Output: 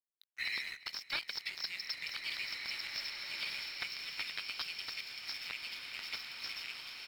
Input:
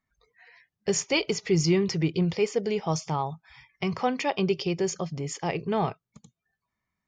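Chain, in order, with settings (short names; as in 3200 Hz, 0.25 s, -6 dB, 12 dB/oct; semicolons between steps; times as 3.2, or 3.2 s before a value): regenerating reverse delay 0.575 s, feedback 56%, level -9 dB; recorder AGC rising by 64 dB/s; elliptic high-pass 2200 Hz, stop band 40 dB; sample leveller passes 2; compressor 2.5:1, threshold -29 dBFS, peak gain reduction 8.5 dB; wrapped overs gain 20 dB; rippled Chebyshev low-pass 5500 Hz, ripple 9 dB; crossover distortion -52.5 dBFS; echo 0.354 s -20 dB; bloom reverb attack 2.24 s, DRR 2.5 dB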